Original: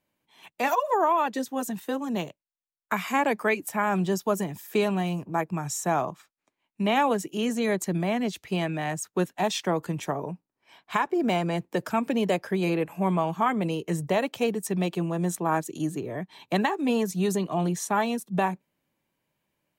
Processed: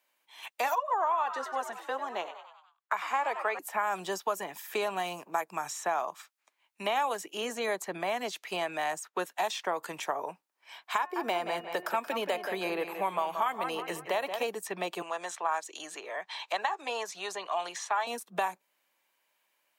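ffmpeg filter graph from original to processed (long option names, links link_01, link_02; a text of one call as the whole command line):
ffmpeg -i in.wav -filter_complex "[0:a]asettb=1/sr,asplit=3[link_01][link_02][link_03];[link_01]atrim=end=0.784[link_04];[link_02]atrim=start=0.78:end=3.59,asetpts=PTS-STARTPTS,afade=type=in:duration=0.004:curve=qsin,afade=type=out:start_time=2.806:duration=0.004:curve=qsin,bandpass=frequency=880:width_type=q:width=0.66,asplit=6[link_05][link_06][link_07][link_08][link_09][link_10];[link_06]adelay=96,afreqshift=110,volume=-13dB[link_11];[link_07]adelay=192,afreqshift=220,volume=-18.8dB[link_12];[link_08]adelay=288,afreqshift=330,volume=-24.7dB[link_13];[link_09]adelay=384,afreqshift=440,volume=-30.5dB[link_14];[link_10]adelay=480,afreqshift=550,volume=-36.4dB[link_15];[link_05][link_11][link_12][link_13][link_14][link_15]amix=inputs=6:normalize=0,atrim=end_sample=123921[link_16];[link_03]atrim=start=3.586[link_17];[link_04][link_16]acrossfade=duration=0.004:curve1=hsin:curve2=qsin[link_18];[link_18][link_17]acrossfade=duration=0.004:curve1=qsin:curve2=hsin,asettb=1/sr,asplit=3[link_19][link_20][link_21];[link_19]atrim=end=10.984[link_22];[link_20]atrim=start=10.98:end=14.44,asetpts=PTS-STARTPTS,afade=type=in:duration=0.004:curve=qsin,afade=type=out:start_time=3.456:duration=0.004:curve=qsin,equalizer=frequency=7200:width_type=o:width=0.85:gain=-8.5,bandreject=frequency=359.1:width_type=h:width=4,bandreject=frequency=718.2:width_type=h:width=4,bandreject=frequency=1077.3:width_type=h:width=4,bandreject=frequency=1436.4:width_type=h:width=4,bandreject=frequency=1795.5:width_type=h:width=4,bandreject=frequency=2154.6:width_type=h:width=4,bandreject=frequency=2513.7:width_type=h:width=4,bandreject=frequency=2872.8:width_type=h:width=4,asplit=2[link_23][link_24];[link_24]adelay=177,lowpass=frequency=3300:poles=1,volume=-10dB,asplit=2[link_25][link_26];[link_26]adelay=177,lowpass=frequency=3300:poles=1,volume=0.34,asplit=2[link_27][link_28];[link_28]adelay=177,lowpass=frequency=3300:poles=1,volume=0.34,asplit=2[link_29][link_30];[link_30]adelay=177,lowpass=frequency=3300:poles=1,volume=0.34[link_31];[link_23][link_25][link_27][link_29][link_31]amix=inputs=5:normalize=0,atrim=end_sample=152586[link_32];[link_21]atrim=start=14.436[link_33];[link_22][link_32]acrossfade=duration=0.004:curve1=hsin:curve2=qsin[link_34];[link_34][link_33]acrossfade=duration=0.004:curve1=qsin:curve2=hsin,asettb=1/sr,asplit=3[link_35][link_36][link_37];[link_35]atrim=end=15.024[link_38];[link_36]atrim=start=15.02:end=18.07,asetpts=PTS-STARTPTS,afade=type=in:duration=0.004:curve=qsin,afade=type=out:start_time=3.046:duration=0.004:curve=qsin,acrossover=split=500 7800:gain=0.141 1 0.112[link_39][link_40][link_41];[link_39][link_40][link_41]amix=inputs=3:normalize=0,acompressor=mode=upward:threshold=-35dB:ratio=2.5:attack=3.2:release=140:knee=2.83:detection=peak[link_42];[link_37]atrim=start=18.066[link_43];[link_38][link_42]acrossfade=duration=0.004:curve1=hsin:curve2=qsin[link_44];[link_44][link_43]acrossfade=duration=0.004:curve1=qsin:curve2=hsin,highpass=830,acrossover=split=1300|3800[link_45][link_46][link_47];[link_45]acompressor=threshold=-35dB:ratio=4[link_48];[link_46]acompressor=threshold=-48dB:ratio=4[link_49];[link_47]acompressor=threshold=-51dB:ratio=4[link_50];[link_48][link_49][link_50]amix=inputs=3:normalize=0,volume=6.5dB" out.wav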